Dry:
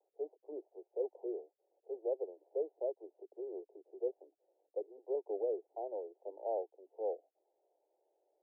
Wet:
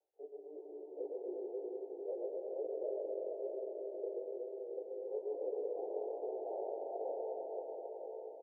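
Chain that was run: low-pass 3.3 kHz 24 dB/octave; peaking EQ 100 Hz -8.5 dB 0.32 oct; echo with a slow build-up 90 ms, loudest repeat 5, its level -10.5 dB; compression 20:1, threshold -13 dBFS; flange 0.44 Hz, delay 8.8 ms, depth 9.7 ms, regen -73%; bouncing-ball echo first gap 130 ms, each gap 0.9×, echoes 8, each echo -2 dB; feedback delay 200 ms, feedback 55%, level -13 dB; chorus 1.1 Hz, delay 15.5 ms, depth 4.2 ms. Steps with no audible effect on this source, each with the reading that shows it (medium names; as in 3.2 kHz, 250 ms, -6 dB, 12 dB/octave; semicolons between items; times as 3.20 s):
low-pass 3.3 kHz: input has nothing above 910 Hz; peaking EQ 100 Hz: input has nothing below 290 Hz; compression, threshold -13 dBFS: peak at its input -24.5 dBFS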